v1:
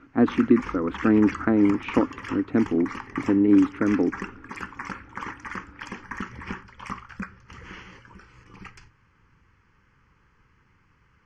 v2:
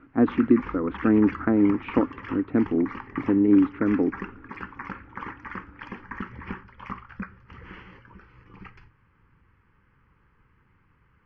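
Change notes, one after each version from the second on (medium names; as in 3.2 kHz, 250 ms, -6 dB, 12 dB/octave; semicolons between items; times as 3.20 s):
master: add distance through air 330 m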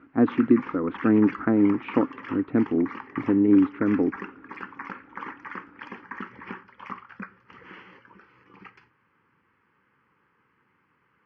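background: add high-pass 240 Hz 12 dB/octave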